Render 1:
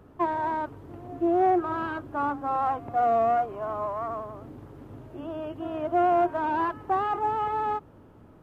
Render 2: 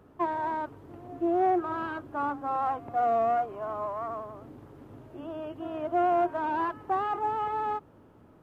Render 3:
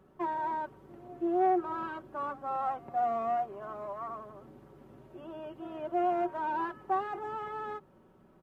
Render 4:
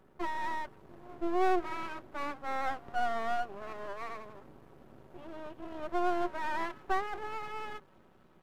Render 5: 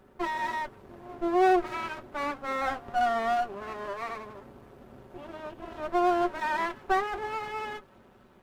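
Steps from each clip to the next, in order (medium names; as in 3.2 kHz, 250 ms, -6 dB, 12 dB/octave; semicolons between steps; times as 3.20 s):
bass shelf 100 Hz -6.5 dB; trim -2.5 dB
comb 5.3 ms, depth 60%; trim -5.5 dB
feedback echo behind a high-pass 294 ms, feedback 83%, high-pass 3.4 kHz, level -19 dB; half-wave rectifier; trim +2.5 dB
comb of notches 160 Hz; trim +7 dB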